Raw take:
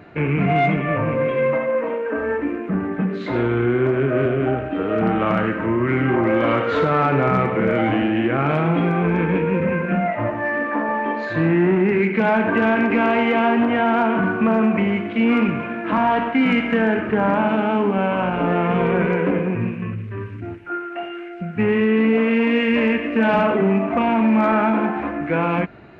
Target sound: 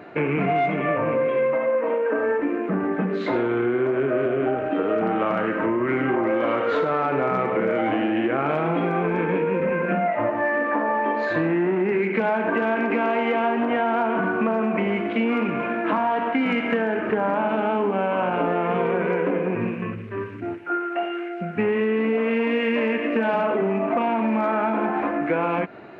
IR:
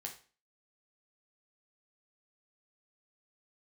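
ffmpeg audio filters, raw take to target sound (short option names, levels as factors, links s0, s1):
-af "highpass=f=310:p=1,equalizer=f=490:t=o:w=2.9:g=6,acompressor=threshold=0.112:ratio=6"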